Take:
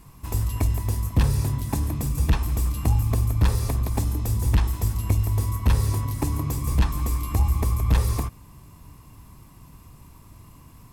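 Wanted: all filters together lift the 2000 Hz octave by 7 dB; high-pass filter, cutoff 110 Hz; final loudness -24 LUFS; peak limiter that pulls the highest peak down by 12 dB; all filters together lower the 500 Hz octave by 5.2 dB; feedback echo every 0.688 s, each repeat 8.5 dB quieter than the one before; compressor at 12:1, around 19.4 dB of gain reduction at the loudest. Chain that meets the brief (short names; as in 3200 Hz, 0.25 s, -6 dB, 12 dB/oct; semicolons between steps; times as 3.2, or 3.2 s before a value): HPF 110 Hz; bell 500 Hz -7.5 dB; bell 2000 Hz +9 dB; compressor 12:1, threshold -40 dBFS; limiter -38 dBFS; feedback echo 0.688 s, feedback 38%, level -8.5 dB; gain +23 dB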